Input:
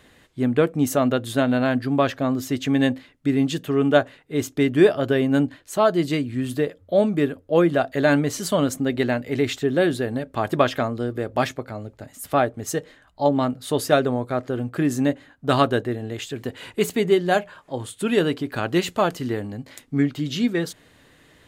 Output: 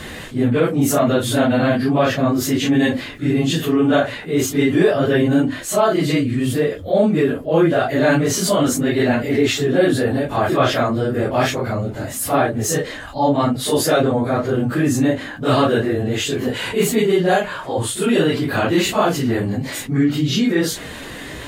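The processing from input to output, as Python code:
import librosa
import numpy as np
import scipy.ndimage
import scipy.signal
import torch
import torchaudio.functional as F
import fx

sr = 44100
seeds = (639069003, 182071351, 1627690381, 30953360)

y = fx.phase_scramble(x, sr, seeds[0], window_ms=100)
y = fx.env_flatten(y, sr, amount_pct=50)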